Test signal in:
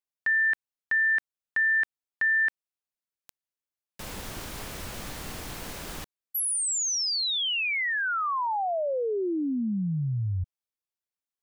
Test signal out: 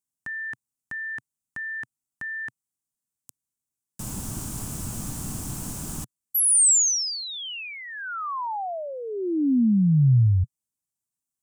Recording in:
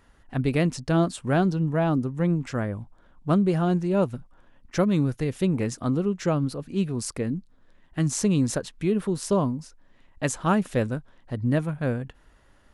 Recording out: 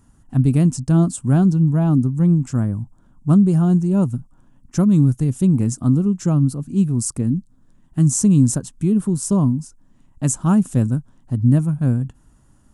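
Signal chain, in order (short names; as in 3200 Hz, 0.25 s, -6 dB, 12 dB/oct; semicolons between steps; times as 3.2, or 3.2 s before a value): graphic EQ 125/250/500/2000/4000/8000 Hz +8/+6/-10/-12/-9/+10 dB; gain +3 dB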